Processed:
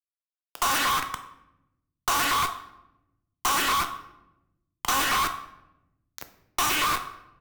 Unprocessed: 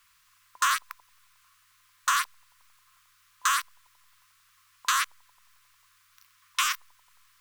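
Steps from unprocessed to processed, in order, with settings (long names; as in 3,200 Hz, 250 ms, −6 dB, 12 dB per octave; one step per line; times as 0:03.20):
downward expander −56 dBFS
high-shelf EQ 6,100 Hz +7 dB
notch filter 3,600 Hz, Q 5.3
comb filter 2.7 ms, depth 36%
in parallel at −11.5 dB: bit reduction 5 bits
on the sum: echo through a band-pass that steps 115 ms, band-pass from 2,500 Hz, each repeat −1.4 octaves, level −1.5 dB
log-companded quantiser 2 bits
fuzz pedal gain 27 dB, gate −32 dBFS
rectangular room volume 170 cubic metres, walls mixed, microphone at 0.42 metres
harmonic generator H 4 −6 dB, 7 −9 dB, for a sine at 3.5 dBFS
multiband upward and downward compressor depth 40%
level −9 dB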